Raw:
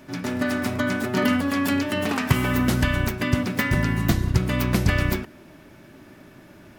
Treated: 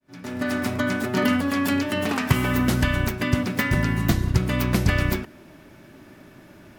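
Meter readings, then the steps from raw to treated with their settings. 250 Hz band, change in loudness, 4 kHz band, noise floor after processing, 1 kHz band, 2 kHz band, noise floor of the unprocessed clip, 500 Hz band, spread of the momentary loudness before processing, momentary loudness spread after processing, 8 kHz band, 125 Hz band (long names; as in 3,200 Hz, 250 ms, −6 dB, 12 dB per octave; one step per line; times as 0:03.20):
0.0 dB, 0.0 dB, 0.0 dB, −49 dBFS, 0.0 dB, 0.0 dB, −49 dBFS, 0.0 dB, 4 LU, 5 LU, 0.0 dB, 0.0 dB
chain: fade in at the beginning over 0.55 s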